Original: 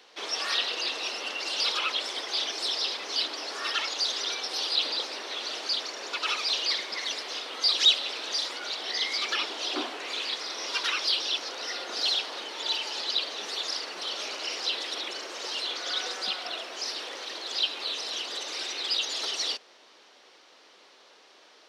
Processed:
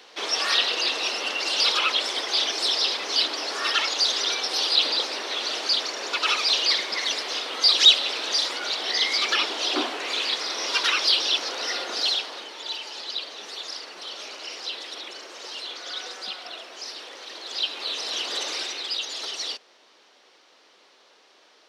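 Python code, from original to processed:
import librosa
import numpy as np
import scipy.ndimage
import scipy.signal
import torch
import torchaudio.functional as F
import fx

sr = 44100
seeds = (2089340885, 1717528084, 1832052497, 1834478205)

y = fx.gain(x, sr, db=fx.line((11.77, 6.0), (12.64, -3.0), (17.16, -3.0), (18.44, 6.5), (18.9, -1.0)))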